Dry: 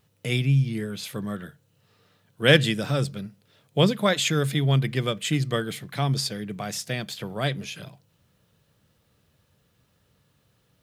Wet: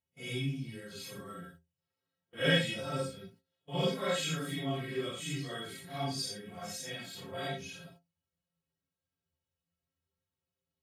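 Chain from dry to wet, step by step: phase scrambler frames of 0.2 s; gate -46 dBFS, range -16 dB; metallic resonator 80 Hz, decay 0.33 s, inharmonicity 0.03

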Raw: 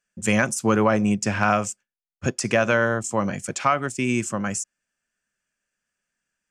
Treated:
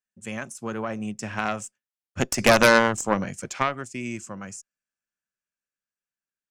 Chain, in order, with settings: Doppler pass-by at 2.65, 10 m/s, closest 4.2 m; added harmonics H 6 -9 dB, 7 -31 dB, 8 -15 dB, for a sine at -7 dBFS; gain +3.5 dB

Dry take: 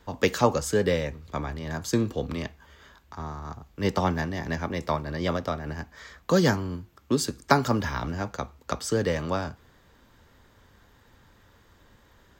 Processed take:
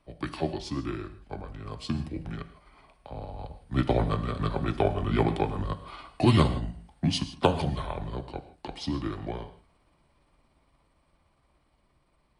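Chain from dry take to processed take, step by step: delay-line pitch shifter -7.5 st; Doppler pass-by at 5.37, 7 m/s, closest 9.2 m; non-linear reverb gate 0.18 s flat, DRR 11 dB; gain +4 dB

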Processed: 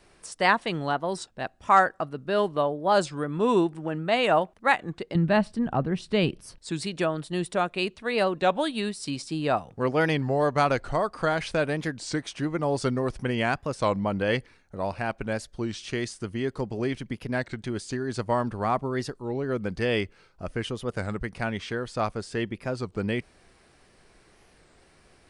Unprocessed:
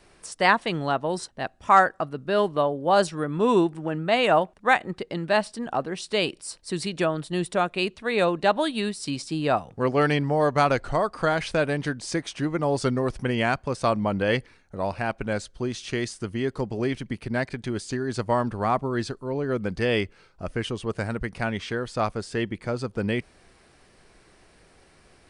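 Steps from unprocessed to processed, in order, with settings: 5.15–6.6 tone controls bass +15 dB, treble -9 dB; record warp 33 1/3 rpm, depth 160 cents; gain -2 dB

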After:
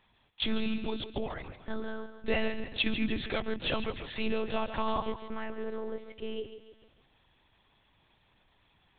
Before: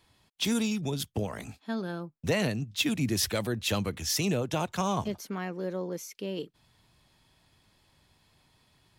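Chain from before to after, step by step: bell 75 Hz -11 dB 1.4 oct; notch 570 Hz, Q 12; thinning echo 0.148 s, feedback 47%, high-pass 180 Hz, level -10 dB; monotone LPC vocoder at 8 kHz 220 Hz

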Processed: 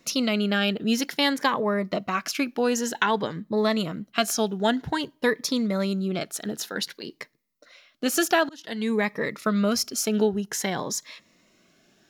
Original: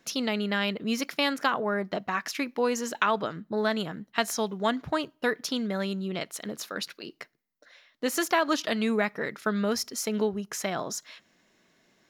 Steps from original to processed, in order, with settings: 5.43–6.47 bell 2900 Hz -7 dB 0.29 oct; 8.49–9.14 fade in; cascading phaser rising 0.53 Hz; gain +5.5 dB

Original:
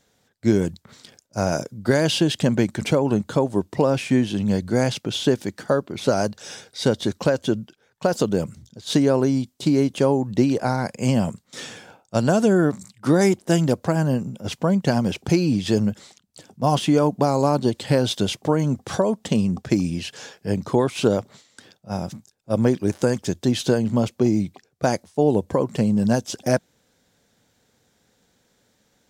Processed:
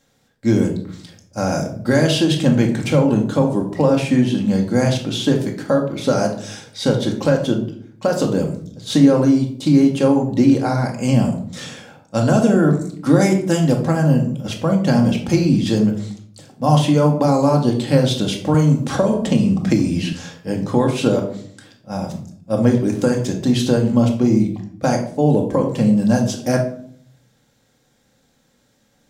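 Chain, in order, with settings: shoebox room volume 800 m³, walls furnished, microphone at 2.2 m; 18.54–20.13 three-band squash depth 70%

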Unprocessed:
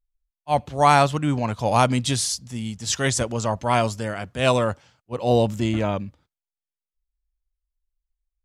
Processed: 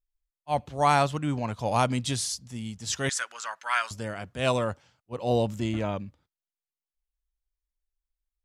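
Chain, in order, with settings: 3.09–3.91 resonant high-pass 1500 Hz, resonance Q 3.5; gain -6 dB

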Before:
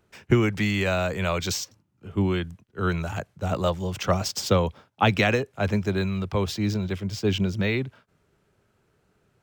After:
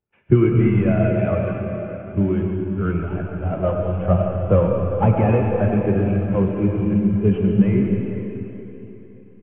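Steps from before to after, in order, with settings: CVSD 16 kbps; notch 1900 Hz, Q 17; doubler 35 ms -14 dB; diffused feedback echo 0.467 s, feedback 58%, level -12.5 dB; reverb RT60 4.3 s, pre-delay 45 ms, DRR -1 dB; spectral expander 1.5:1; gain +6 dB

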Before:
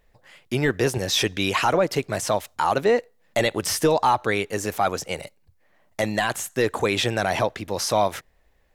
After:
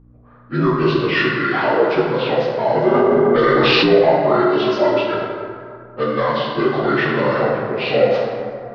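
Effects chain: inharmonic rescaling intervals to 76%; 1.34–1.96 HPF 290 Hz 24 dB/oct; 4.38–5.14 comb 3 ms, depth 80%; low-pass opened by the level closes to 1000 Hz, open at -17.5 dBFS; hum 60 Hz, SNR 24 dB; plate-style reverb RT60 2.3 s, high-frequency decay 0.45×, DRR -3.5 dB; 2.94–3.86 fast leveller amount 100%; gain +2 dB

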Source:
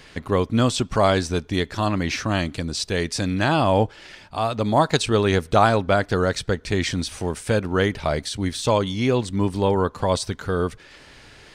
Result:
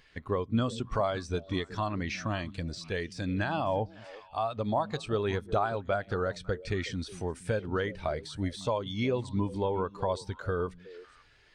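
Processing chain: low shelf 440 Hz -11 dB; compressor 3:1, threshold -28 dBFS, peak gain reduction 11 dB; low shelf 100 Hz +9 dB; on a send: delay with a stepping band-pass 0.184 s, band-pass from 160 Hz, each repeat 1.4 oct, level -7 dB; on the sum: de-esser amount 70%; spectral expander 1.5:1; gain -2 dB

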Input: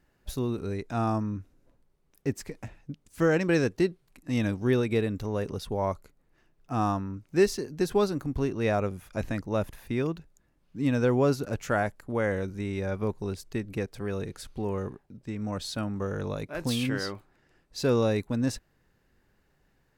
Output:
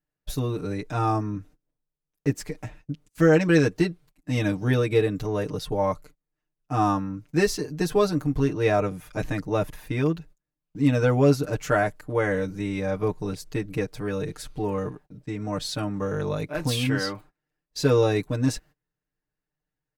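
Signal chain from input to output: gate -51 dBFS, range -24 dB; comb 6.6 ms, depth 100%; gain +1.5 dB

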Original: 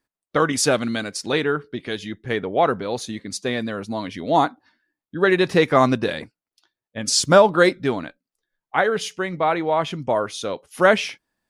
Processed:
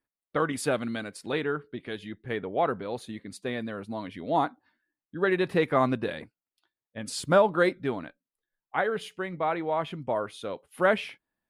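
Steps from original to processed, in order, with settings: bell 5900 Hz -14.5 dB 0.76 oct; gain -7.5 dB

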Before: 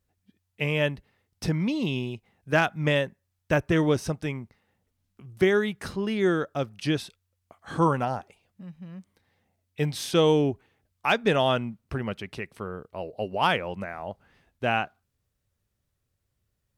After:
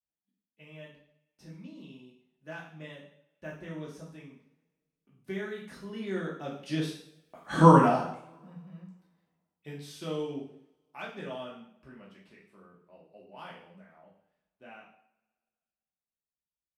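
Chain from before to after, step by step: Doppler pass-by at 7.57, 8 m/s, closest 1.6 m; resonant low shelf 140 Hz -6 dB, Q 3; two-slope reverb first 0.6 s, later 2 s, from -27 dB, DRR -5 dB; gain +1 dB

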